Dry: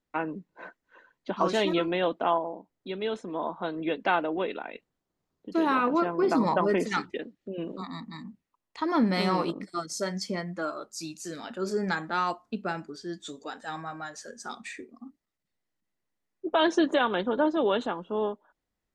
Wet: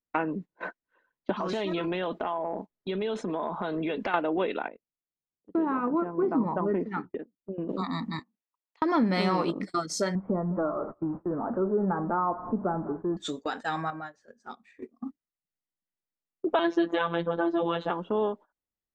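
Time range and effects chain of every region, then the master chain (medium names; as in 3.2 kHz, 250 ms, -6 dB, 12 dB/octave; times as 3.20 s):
1.32–4.14 s: comb 4.8 ms, depth 31% + compression 4:1, threshold -33 dBFS + transient shaper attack -2 dB, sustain +4 dB
4.68–7.69 s: low-pass 1 kHz + dynamic bell 590 Hz, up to -6 dB, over -40 dBFS, Q 1.5 + upward expansion, over -39 dBFS
8.19–8.82 s: compression 12:1, threshold -46 dBFS + band-pass 440–7900 Hz
10.15–13.17 s: jump at every zero crossing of -40.5 dBFS + steep low-pass 1.2 kHz + delay 200 ms -19 dB
13.90–14.82 s: treble shelf 3 kHz -11.5 dB + compression 2:1, threshold -46 dBFS
16.59–17.90 s: low-pass 4 kHz + robot voice 169 Hz
whole clip: gate -44 dBFS, range -22 dB; treble shelf 7 kHz -11.5 dB; compression 2:1, threshold -38 dBFS; trim +9 dB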